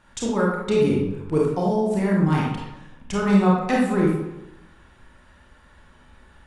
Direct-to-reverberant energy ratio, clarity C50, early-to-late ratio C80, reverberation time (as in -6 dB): -4.0 dB, 0.0 dB, 4.0 dB, 0.95 s